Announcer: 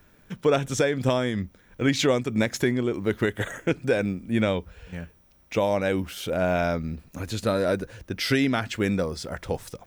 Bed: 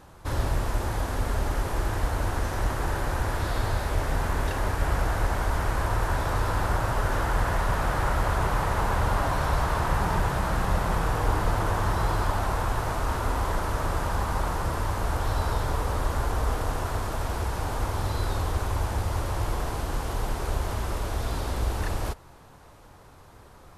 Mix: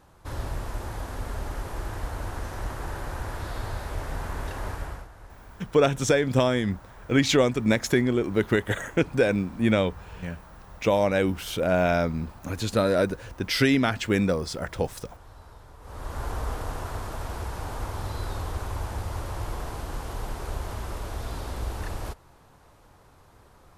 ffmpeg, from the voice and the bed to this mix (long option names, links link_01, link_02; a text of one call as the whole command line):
ffmpeg -i stem1.wav -i stem2.wav -filter_complex "[0:a]adelay=5300,volume=1.5dB[link_01];[1:a]volume=11.5dB,afade=type=out:start_time=4.72:duration=0.36:silence=0.158489,afade=type=in:start_time=15.8:duration=0.48:silence=0.133352[link_02];[link_01][link_02]amix=inputs=2:normalize=0" out.wav